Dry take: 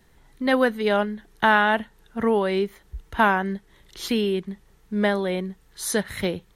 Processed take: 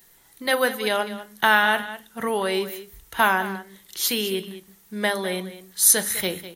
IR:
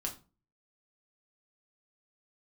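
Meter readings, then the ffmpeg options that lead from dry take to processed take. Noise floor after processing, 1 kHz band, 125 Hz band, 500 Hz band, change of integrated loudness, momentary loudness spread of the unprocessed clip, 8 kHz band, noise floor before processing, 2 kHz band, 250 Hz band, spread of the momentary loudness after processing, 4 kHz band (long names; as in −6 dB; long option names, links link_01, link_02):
−56 dBFS, −0.5 dB, can't be measured, −2.5 dB, +1.5 dB, 15 LU, +13.5 dB, −57 dBFS, +2.0 dB, −6.0 dB, 17 LU, +5.5 dB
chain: -filter_complex "[0:a]aemphasis=mode=production:type=riaa,aecho=1:1:202:0.2,asplit=2[link_01][link_02];[1:a]atrim=start_sample=2205,lowshelf=frequency=250:gain=10[link_03];[link_02][link_03]afir=irnorm=-1:irlink=0,volume=-7.5dB[link_04];[link_01][link_04]amix=inputs=2:normalize=0,volume=-3dB"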